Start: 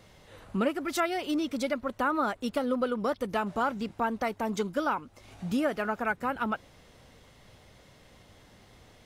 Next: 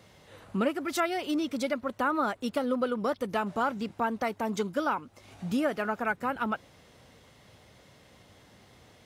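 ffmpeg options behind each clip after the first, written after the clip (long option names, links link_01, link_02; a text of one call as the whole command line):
ffmpeg -i in.wav -af "highpass=72" out.wav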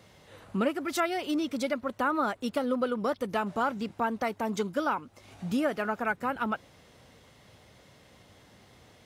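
ffmpeg -i in.wav -af anull out.wav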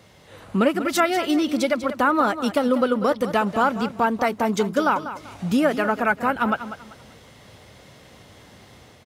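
ffmpeg -i in.wav -filter_complex "[0:a]dynaudnorm=framelen=150:gausssize=5:maxgain=4dB,asplit=2[link_01][link_02];[link_02]aecho=0:1:194|388|582:0.251|0.0678|0.0183[link_03];[link_01][link_03]amix=inputs=2:normalize=0,volume=4.5dB" out.wav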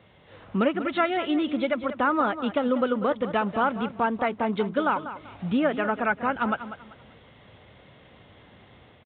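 ffmpeg -i in.wav -af "aresample=8000,aresample=44100,volume=-4dB" out.wav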